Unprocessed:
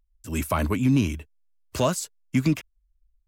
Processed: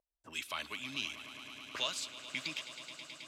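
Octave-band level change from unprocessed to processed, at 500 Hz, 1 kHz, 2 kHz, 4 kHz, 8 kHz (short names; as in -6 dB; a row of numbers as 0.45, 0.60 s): -20.5, -14.5, -4.5, +1.5, -10.5 dB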